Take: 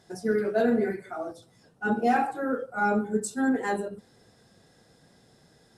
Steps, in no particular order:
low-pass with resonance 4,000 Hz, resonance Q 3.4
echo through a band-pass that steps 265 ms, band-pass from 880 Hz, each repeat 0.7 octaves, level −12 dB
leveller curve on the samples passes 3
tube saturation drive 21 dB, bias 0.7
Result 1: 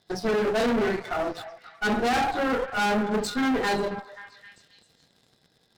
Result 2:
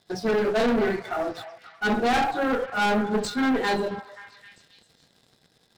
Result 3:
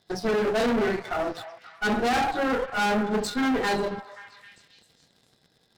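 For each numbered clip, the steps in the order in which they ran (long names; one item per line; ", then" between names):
low-pass with resonance, then leveller curve on the samples, then echo through a band-pass that steps, then tube saturation
tube saturation, then low-pass with resonance, then leveller curve on the samples, then echo through a band-pass that steps
low-pass with resonance, then leveller curve on the samples, then tube saturation, then echo through a band-pass that steps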